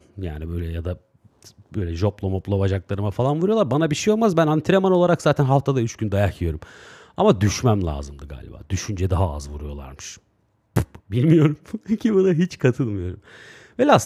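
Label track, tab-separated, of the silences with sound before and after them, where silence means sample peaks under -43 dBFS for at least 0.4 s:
10.170000	10.760000	silence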